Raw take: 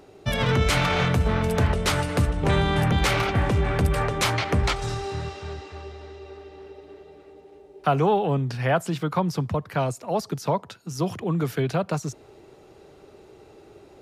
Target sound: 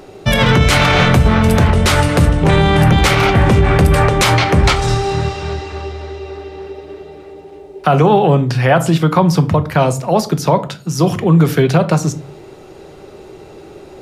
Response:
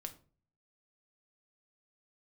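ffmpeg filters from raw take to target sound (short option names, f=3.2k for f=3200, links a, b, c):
-filter_complex "[0:a]asplit=2[a][b];[1:a]atrim=start_sample=2205[c];[b][c]afir=irnorm=-1:irlink=0,volume=8.5dB[d];[a][d]amix=inputs=2:normalize=0,alimiter=level_in=5dB:limit=-1dB:release=50:level=0:latency=1,volume=-1dB"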